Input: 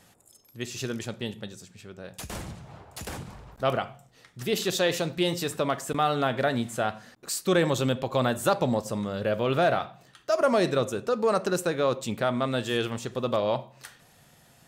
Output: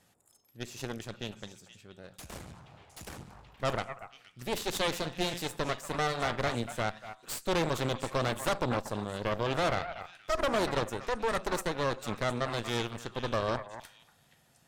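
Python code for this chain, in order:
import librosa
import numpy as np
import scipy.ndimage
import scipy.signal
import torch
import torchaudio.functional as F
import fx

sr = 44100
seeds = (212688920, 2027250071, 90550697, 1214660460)

y = fx.echo_stepped(x, sr, ms=237, hz=1000.0, octaves=1.4, feedback_pct=70, wet_db=-5)
y = fx.cheby_harmonics(y, sr, harmonics=(6,), levels_db=(-9,), full_scale_db=-10.5)
y = y * 10.0 ** (-9.0 / 20.0)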